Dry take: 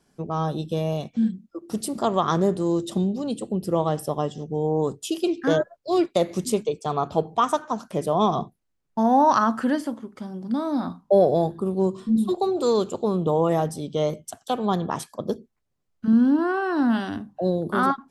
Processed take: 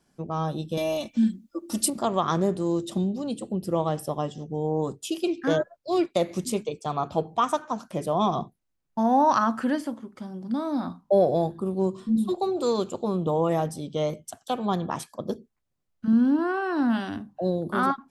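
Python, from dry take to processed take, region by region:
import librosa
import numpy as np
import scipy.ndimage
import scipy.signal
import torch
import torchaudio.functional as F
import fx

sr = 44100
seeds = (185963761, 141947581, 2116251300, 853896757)

y = fx.chain(x, sr, fx.high_shelf(hz=3100.0, db=8.5),
    fx.comb(ms=3.4, depth=0.92), at=(0.77, 1.9))
y = fx.notch(y, sr, hz=430.0, q=12.0)
y = fx.dynamic_eq(y, sr, hz=2400.0, q=4.7, threshold_db=-51.0, ratio=4.0, max_db=4)
y = F.gain(torch.from_numpy(y), -2.5).numpy()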